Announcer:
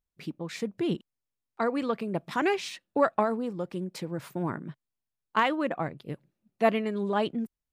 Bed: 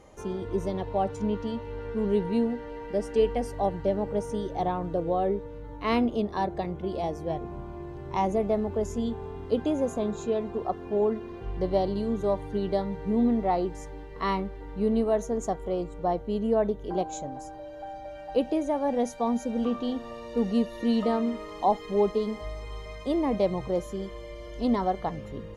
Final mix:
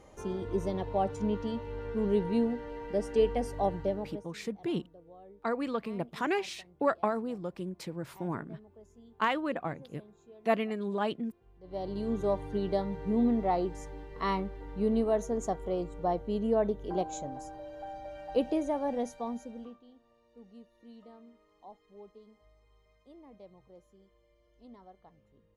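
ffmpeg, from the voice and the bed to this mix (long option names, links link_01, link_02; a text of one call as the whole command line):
ffmpeg -i stem1.wav -i stem2.wav -filter_complex "[0:a]adelay=3850,volume=-4dB[link_01];[1:a]volume=21dB,afade=type=out:start_time=3.75:duration=0.52:silence=0.0630957,afade=type=in:start_time=11.63:duration=0.5:silence=0.0668344,afade=type=out:start_time=18.58:duration=1.22:silence=0.0595662[link_02];[link_01][link_02]amix=inputs=2:normalize=0" out.wav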